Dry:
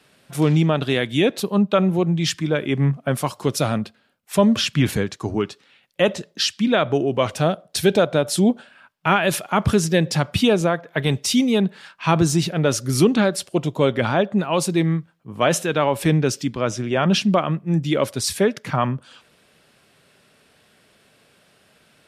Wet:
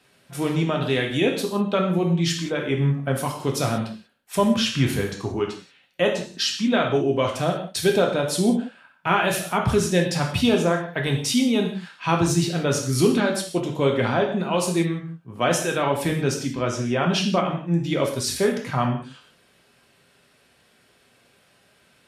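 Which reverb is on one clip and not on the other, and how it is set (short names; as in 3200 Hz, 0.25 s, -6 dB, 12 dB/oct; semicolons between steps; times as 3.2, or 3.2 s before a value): non-linear reverb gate 0.21 s falling, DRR 0.5 dB; gain -4.5 dB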